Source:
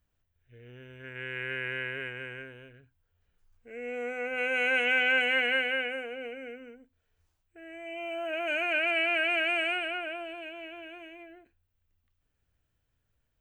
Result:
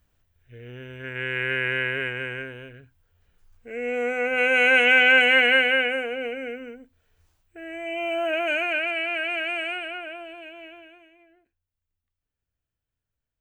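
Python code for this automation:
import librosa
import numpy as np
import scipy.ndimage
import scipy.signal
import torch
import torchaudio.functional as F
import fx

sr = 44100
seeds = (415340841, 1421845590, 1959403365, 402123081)

y = fx.gain(x, sr, db=fx.line((8.26, 9.0), (8.96, 0.0), (10.69, 0.0), (11.11, -9.0)))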